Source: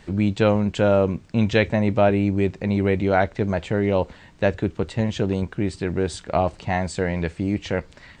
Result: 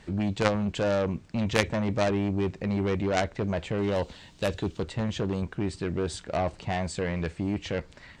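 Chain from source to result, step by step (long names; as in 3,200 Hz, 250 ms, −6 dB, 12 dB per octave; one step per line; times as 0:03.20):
0:03.78–0:04.83: high shelf with overshoot 2,600 Hz +7 dB, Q 1.5
harmonic generator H 3 −6 dB, 5 −13 dB, 6 −31 dB, 8 −36 dB, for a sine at −5.5 dBFS
level +1 dB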